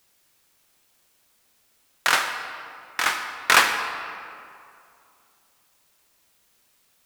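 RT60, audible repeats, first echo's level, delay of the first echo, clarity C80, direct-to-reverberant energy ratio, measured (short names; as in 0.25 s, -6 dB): 2.5 s, none, none, none, 7.5 dB, 6.0 dB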